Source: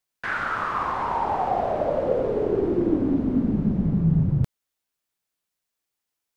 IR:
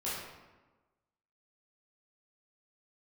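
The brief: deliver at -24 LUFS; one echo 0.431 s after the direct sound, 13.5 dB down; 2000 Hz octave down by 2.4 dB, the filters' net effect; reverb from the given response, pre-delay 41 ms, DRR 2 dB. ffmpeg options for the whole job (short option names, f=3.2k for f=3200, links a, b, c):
-filter_complex "[0:a]equalizer=f=2k:t=o:g=-3.5,aecho=1:1:431:0.211,asplit=2[a][b];[1:a]atrim=start_sample=2205,adelay=41[c];[b][c]afir=irnorm=-1:irlink=0,volume=-6.5dB[d];[a][d]amix=inputs=2:normalize=0,volume=-2dB"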